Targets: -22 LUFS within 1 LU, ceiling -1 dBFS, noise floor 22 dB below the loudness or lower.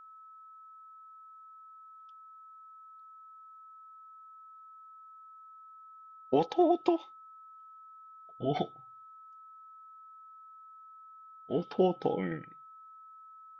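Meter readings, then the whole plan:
steady tone 1.3 kHz; tone level -50 dBFS; loudness -31.0 LUFS; peak level -13.5 dBFS; loudness target -22.0 LUFS
-> band-stop 1.3 kHz, Q 30; trim +9 dB

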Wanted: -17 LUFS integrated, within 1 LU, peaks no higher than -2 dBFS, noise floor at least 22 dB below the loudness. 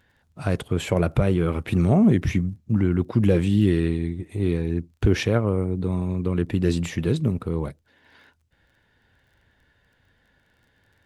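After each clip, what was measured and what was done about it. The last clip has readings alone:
tick rate 24 per s; loudness -23.0 LUFS; peak level -6.5 dBFS; loudness target -17.0 LUFS
-> de-click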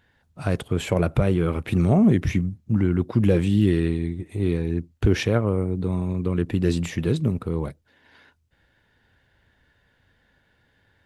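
tick rate 0 per s; loudness -23.0 LUFS; peak level -6.5 dBFS; loudness target -17.0 LUFS
-> trim +6 dB; peak limiter -2 dBFS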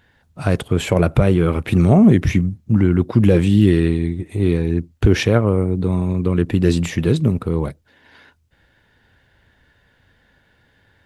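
loudness -17.0 LUFS; peak level -2.0 dBFS; noise floor -59 dBFS

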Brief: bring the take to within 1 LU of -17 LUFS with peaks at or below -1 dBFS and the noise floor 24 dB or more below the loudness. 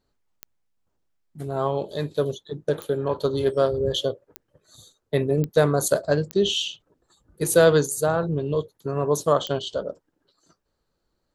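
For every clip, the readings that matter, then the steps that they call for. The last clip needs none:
clicks found 6; loudness -23.5 LUFS; peak level -5.0 dBFS; loudness target -17.0 LUFS
-> de-click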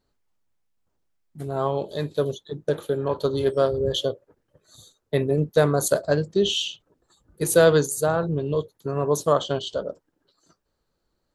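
clicks found 0; loudness -23.5 LUFS; peak level -5.0 dBFS; loudness target -17.0 LUFS
-> trim +6.5 dB; peak limiter -1 dBFS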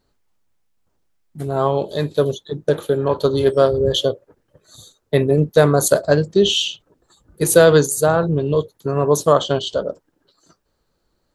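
loudness -17.5 LUFS; peak level -1.0 dBFS; noise floor -70 dBFS

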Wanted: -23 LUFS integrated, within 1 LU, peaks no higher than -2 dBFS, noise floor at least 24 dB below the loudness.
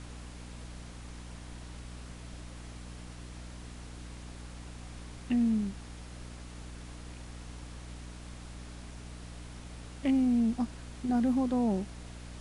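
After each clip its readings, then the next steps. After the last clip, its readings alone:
hum 60 Hz; highest harmonic 300 Hz; hum level -43 dBFS; noise floor -46 dBFS; noise floor target -54 dBFS; loudness -30.0 LUFS; peak level -19.0 dBFS; loudness target -23.0 LUFS
-> hum notches 60/120/180/240/300 Hz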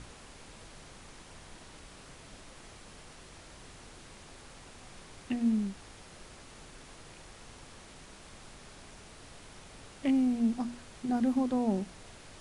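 hum not found; noise floor -52 dBFS; noise floor target -55 dBFS
-> noise print and reduce 6 dB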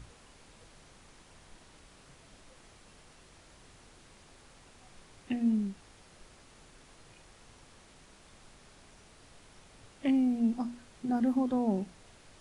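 noise floor -58 dBFS; loudness -31.0 LUFS; peak level -19.5 dBFS; loudness target -23.0 LUFS
-> trim +8 dB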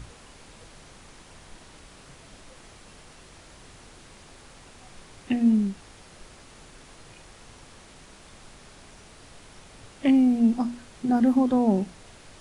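loudness -23.0 LUFS; peak level -11.5 dBFS; noise floor -50 dBFS

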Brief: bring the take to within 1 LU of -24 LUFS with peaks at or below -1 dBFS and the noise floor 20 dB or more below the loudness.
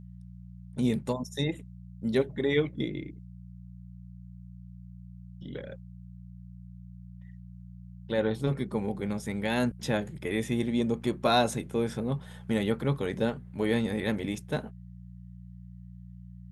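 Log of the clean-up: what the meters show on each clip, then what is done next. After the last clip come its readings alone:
hum 60 Hz; highest harmonic 180 Hz; hum level -43 dBFS; loudness -30.5 LUFS; peak level -10.5 dBFS; loudness target -24.0 LUFS
-> de-hum 60 Hz, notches 3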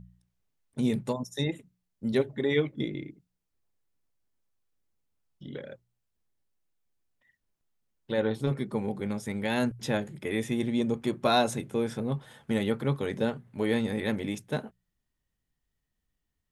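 hum not found; loudness -30.0 LUFS; peak level -10.5 dBFS; loudness target -24.0 LUFS
-> trim +6 dB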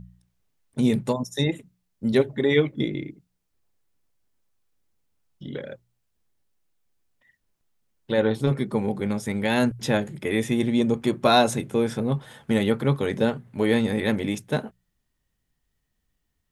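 loudness -24.0 LUFS; peak level -4.5 dBFS; noise floor -76 dBFS

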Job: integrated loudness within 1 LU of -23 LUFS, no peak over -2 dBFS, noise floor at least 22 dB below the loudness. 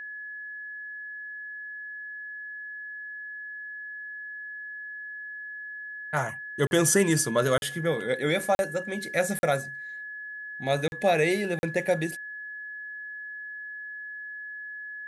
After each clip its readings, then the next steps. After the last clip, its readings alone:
dropouts 6; longest dropout 41 ms; steady tone 1.7 kHz; tone level -36 dBFS; loudness -30.0 LUFS; peak level -9.5 dBFS; loudness target -23.0 LUFS
-> interpolate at 6.67/7.58/8.55/9.39/10.88/11.59 s, 41 ms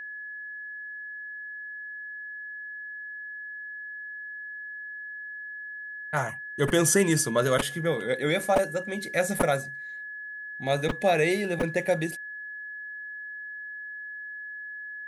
dropouts 0; steady tone 1.7 kHz; tone level -36 dBFS
-> band-stop 1.7 kHz, Q 30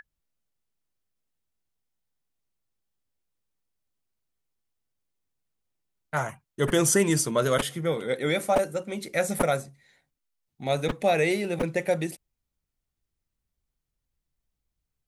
steady tone not found; loudness -26.0 LUFS; peak level -9.5 dBFS; loudness target -23.0 LUFS
-> trim +3 dB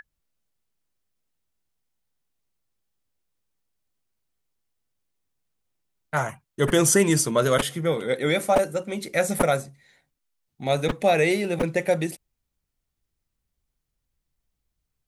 loudness -23.0 LUFS; peak level -6.5 dBFS; noise floor -81 dBFS

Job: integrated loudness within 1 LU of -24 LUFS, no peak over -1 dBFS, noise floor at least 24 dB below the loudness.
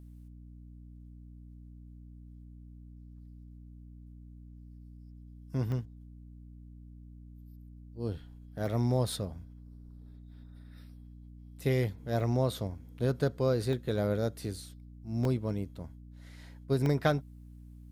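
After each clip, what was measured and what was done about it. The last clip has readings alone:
dropouts 6; longest dropout 1.3 ms; hum 60 Hz; highest harmonic 300 Hz; hum level -48 dBFS; loudness -32.5 LUFS; peak level -14.0 dBFS; loudness target -24.0 LUFS
-> interpolate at 5.72/8.66/12.20/13.73/15.25/16.86 s, 1.3 ms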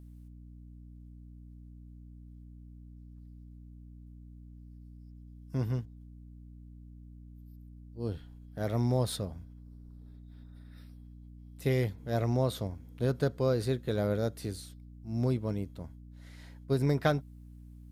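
dropouts 0; hum 60 Hz; highest harmonic 300 Hz; hum level -48 dBFS
-> de-hum 60 Hz, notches 5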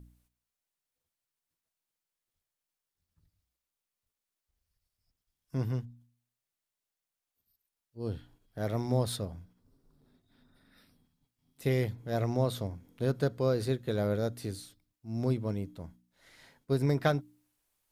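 hum not found; loudness -32.5 LUFS; peak level -13.5 dBFS; loudness target -24.0 LUFS
-> trim +8.5 dB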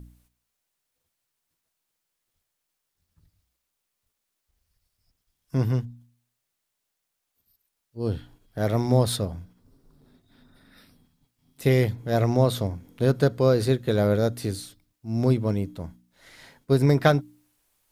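loudness -24.0 LUFS; peak level -5.0 dBFS; noise floor -81 dBFS

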